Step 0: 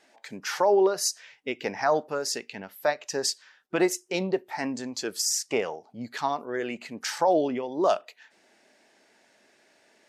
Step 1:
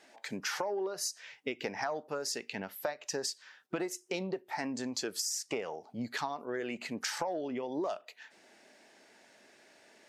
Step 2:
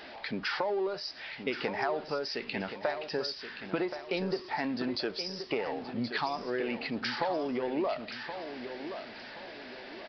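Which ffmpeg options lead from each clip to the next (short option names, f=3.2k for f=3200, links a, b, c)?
-af "acontrast=89,highpass=49,acompressor=threshold=-26dB:ratio=10,volume=-6dB"
-filter_complex "[0:a]aeval=exprs='val(0)+0.5*0.00562*sgn(val(0))':c=same,asplit=2[a][b];[b]aecho=0:1:1075|2150|3225|4300:0.335|0.121|0.0434|0.0156[c];[a][c]amix=inputs=2:normalize=0,aresample=11025,aresample=44100,volume=2.5dB"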